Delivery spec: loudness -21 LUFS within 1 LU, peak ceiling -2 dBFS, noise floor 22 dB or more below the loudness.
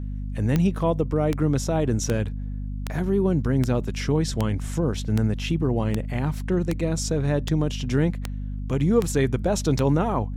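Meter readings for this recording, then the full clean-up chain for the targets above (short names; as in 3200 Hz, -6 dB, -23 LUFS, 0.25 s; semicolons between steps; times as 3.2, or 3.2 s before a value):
clicks 13; hum 50 Hz; harmonics up to 250 Hz; hum level -27 dBFS; loudness -24.5 LUFS; peak -8.0 dBFS; loudness target -21.0 LUFS
-> de-click; notches 50/100/150/200/250 Hz; gain +3.5 dB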